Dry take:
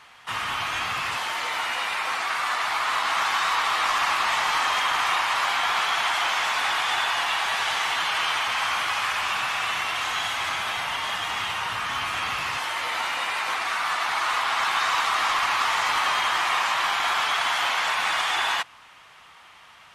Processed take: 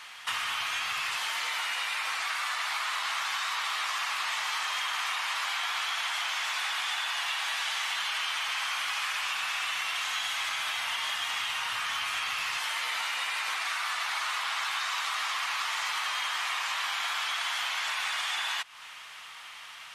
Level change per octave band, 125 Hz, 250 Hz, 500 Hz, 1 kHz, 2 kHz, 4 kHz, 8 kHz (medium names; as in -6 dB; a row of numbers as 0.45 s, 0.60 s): under -15 dB, under -15 dB, -14.0 dB, -10.0 dB, -6.0 dB, -3.5 dB, -2.5 dB